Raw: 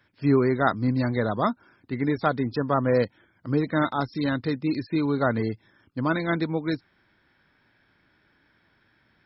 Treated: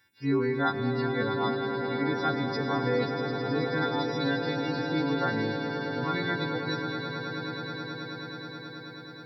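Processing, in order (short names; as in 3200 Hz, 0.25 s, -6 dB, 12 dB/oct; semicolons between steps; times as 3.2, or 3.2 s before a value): frequency quantiser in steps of 2 st; high shelf 4100 Hz +10 dB; notch comb 630 Hz; swelling echo 0.107 s, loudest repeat 8, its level -11 dB; reverb RT60 3.8 s, pre-delay 65 ms, DRR 8 dB; gain -6 dB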